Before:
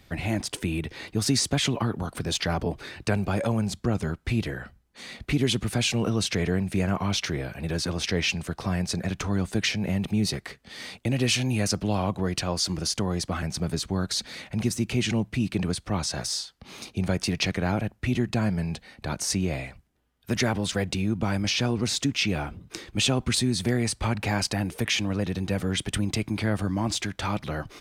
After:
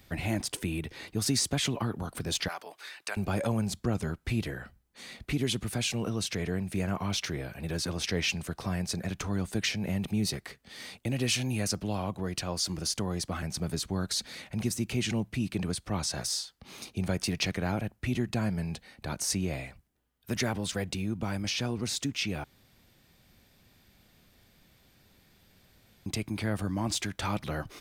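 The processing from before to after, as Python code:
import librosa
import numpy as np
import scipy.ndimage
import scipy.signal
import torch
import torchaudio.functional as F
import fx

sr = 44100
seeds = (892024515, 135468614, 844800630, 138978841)

y = fx.highpass(x, sr, hz=980.0, slope=12, at=(2.48, 3.17))
y = fx.edit(y, sr, fx.room_tone_fill(start_s=22.44, length_s=3.62), tone=tone)
y = fx.high_shelf(y, sr, hz=11000.0, db=10.5)
y = fx.rider(y, sr, range_db=4, speed_s=2.0)
y = y * 10.0 ** (-5.5 / 20.0)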